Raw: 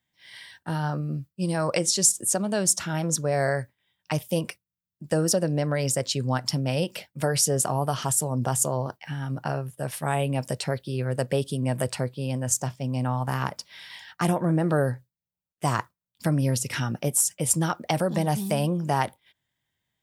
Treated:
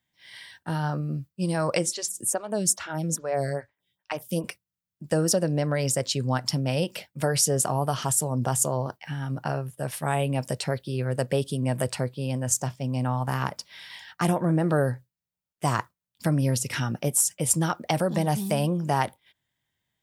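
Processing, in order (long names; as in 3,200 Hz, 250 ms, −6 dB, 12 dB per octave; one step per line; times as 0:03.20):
0:01.88–0:04.44: phaser with staggered stages 2.4 Hz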